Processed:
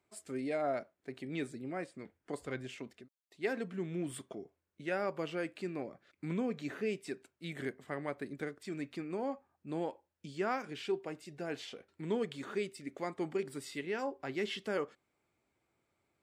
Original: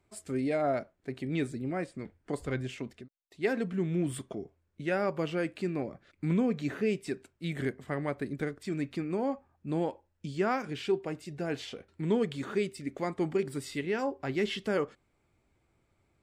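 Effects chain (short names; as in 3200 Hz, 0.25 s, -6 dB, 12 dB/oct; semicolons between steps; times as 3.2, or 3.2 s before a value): HPF 280 Hz 6 dB/oct; gain -4 dB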